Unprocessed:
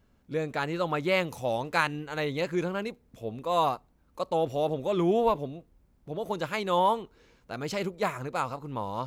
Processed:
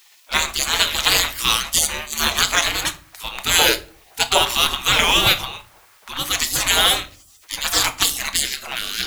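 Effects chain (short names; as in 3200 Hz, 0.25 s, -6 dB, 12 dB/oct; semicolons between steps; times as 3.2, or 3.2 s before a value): spectral gate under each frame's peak -30 dB weak; 3.59–4.42 band shelf 550 Hz +11 dB; in parallel at -10 dB: bit-crush 8-bit; on the sum: shoebox room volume 330 m³, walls furnished, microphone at 0.62 m; maximiser +31.5 dB; gain -1 dB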